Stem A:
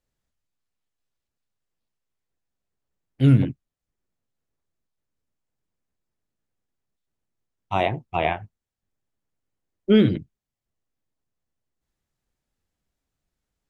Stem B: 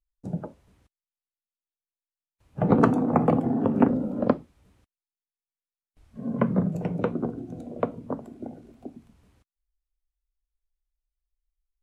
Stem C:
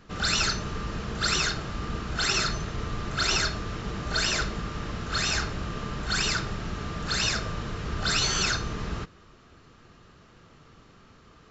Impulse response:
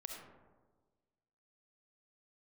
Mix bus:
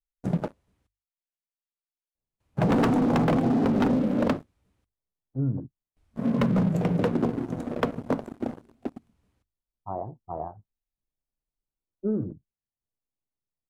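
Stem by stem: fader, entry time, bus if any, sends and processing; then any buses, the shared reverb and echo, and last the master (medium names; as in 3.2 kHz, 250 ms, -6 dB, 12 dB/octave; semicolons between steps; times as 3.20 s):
-10.5 dB, 2.15 s, no send, steep low-pass 1.2 kHz 48 dB/octave
-4.0 dB, 0.00 s, no send, hum notches 50/100 Hz; waveshaping leveller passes 3; overload inside the chain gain 11 dB
mute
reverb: none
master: compression, threshold -20 dBFS, peak gain reduction 4 dB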